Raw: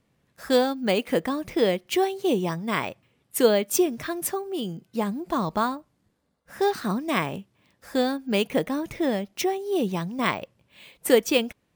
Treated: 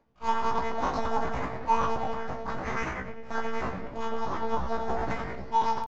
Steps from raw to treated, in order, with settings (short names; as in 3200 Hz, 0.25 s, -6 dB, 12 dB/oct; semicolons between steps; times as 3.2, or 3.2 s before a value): median filter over 25 samples; in parallel at +1 dB: compressor 6:1, threshold -38 dBFS, peak gain reduction 22.5 dB; on the sum: shoebox room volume 130 m³, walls hard, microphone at 0.6 m; monotone LPC vocoder at 8 kHz 120 Hz; reverse; upward compressor, threshold -36 dBFS; reverse; pitch shift +11 st; dynamic EQ 1300 Hz, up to +5 dB, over -33 dBFS, Q 1.2; resonator 64 Hz, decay 0.28 s, harmonics all, mix 90%; granular stretch 0.5×, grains 0.193 s; gain -3.5 dB